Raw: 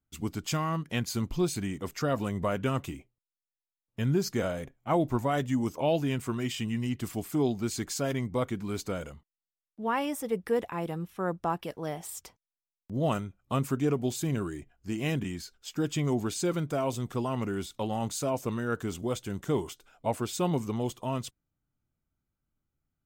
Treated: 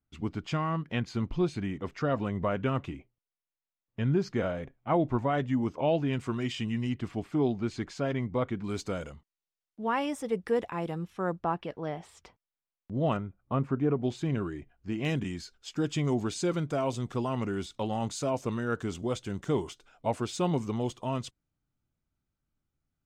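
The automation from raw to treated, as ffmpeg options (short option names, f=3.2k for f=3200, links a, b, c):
-af "asetnsamples=n=441:p=0,asendcmd='6.13 lowpass f 5100;6.94 lowpass f 3000;8.64 lowpass f 7300;11.39 lowpass f 3200;13.17 lowpass f 1600;14.03 lowpass f 3300;15.05 lowpass f 6900',lowpass=3k"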